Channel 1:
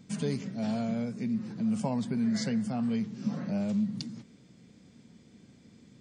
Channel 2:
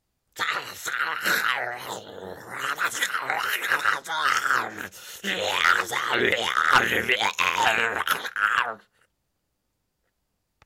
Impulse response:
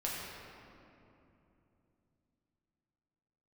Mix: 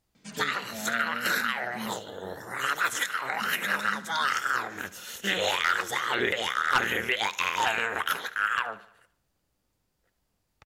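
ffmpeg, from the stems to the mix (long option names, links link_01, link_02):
-filter_complex "[0:a]highpass=frequency=840:poles=1,adynamicsmooth=sensitivity=5.5:basefreq=6400,adelay=150,volume=2.5dB,asplit=3[link_01][link_02][link_03];[link_01]atrim=end=1.94,asetpts=PTS-STARTPTS,afade=type=out:start_time=1.936:duration=0.004:curve=hsin[link_04];[link_02]atrim=start=1.94:end=3.32,asetpts=PTS-STARTPTS,volume=0[link_05];[link_03]atrim=start=3.32,asetpts=PTS-STARTPTS,afade=type=in:duration=0.004:curve=hsin[link_06];[link_04][link_05][link_06]concat=n=3:v=0:a=1[link_07];[1:a]volume=0dB,asplit=2[link_08][link_09];[link_09]volume=-19.5dB,aecho=0:1:74|148|222|296|370|444|518:1|0.47|0.221|0.104|0.0488|0.0229|0.0108[link_10];[link_07][link_08][link_10]amix=inputs=3:normalize=0,alimiter=limit=-14.5dB:level=0:latency=1:release=363"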